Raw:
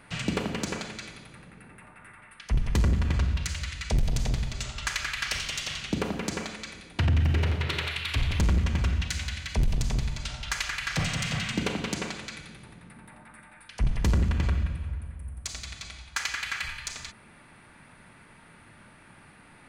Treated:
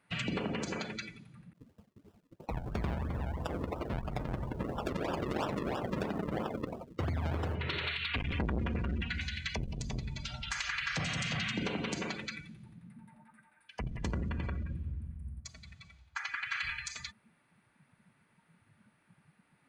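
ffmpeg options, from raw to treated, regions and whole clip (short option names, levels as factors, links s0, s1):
-filter_complex "[0:a]asettb=1/sr,asplit=3[s0][s1][s2];[s0]atrim=end=1.534[s3];[s1]atrim=start=1.53:end=7.55,asetpts=PTS-STARTPTS,afade=t=in:d=0.004:c=qsin,afade=t=out:st=6.016:d=0.004:c=qsin,highshelf=f=3800:g=11,acrusher=samples=40:mix=1:aa=0.000001:lfo=1:lforange=40:lforate=3,agate=range=0.0224:threshold=0.00562:ratio=3:release=100:detection=peak[s4];[s2]atrim=start=7.546[s5];[s3][s4]acrossfade=d=0.004:c1=hsin:c2=qsin[s6];[s6][s5]acrossfade=d=0.004:c1=qsin:c2=hsin,asettb=1/sr,asplit=3[s7][s8][s9];[s7]atrim=end=8.084[s10];[s8]atrim=start=8.08:end=9.21,asetpts=PTS-STARTPTS,afade=t=in:d=0.004:c=qsin,afade=t=out:st=1.126:d=0.004:c=qsin,acrossover=split=3600[s11][s12];[s12]acompressor=threshold=0.00178:ratio=4:attack=1:release=60[s13];[s11][s13]amix=inputs=2:normalize=0,aecho=1:1:4.2:0.37,atrim=end_sample=49833,asoftclip=type=hard:threshold=0.0447[s14];[s9]atrim=start=9.206[s15];[s10][s14]acrossfade=d=0.004:c1=hsin:c2=qsin[s16];[s16][s15]acrossfade=d=0.004:c1=qsin:c2=hsin,asettb=1/sr,asplit=3[s17][s18][s19];[s17]atrim=end=15.404[s20];[s18]atrim=start=15.4:end=16.51,asetpts=PTS-STARTPTS,afade=t=in:d=0.004:c=qsin,afade=t=out:st=1.106:d=0.004:c=qsin,highpass=86,highshelf=f=2100:g=-9.5[s21];[s19]atrim=start=16.506[s22];[s20][s21]acrossfade=d=0.004:c1=hsin:c2=qsin[s23];[s23][s22]acrossfade=d=0.004:c1=qsin:c2=hsin,afftdn=nr=20:nf=-39,alimiter=level_in=1.41:limit=0.0631:level=0:latency=1:release=102,volume=0.708,highpass=f=140:p=1,volume=1.33"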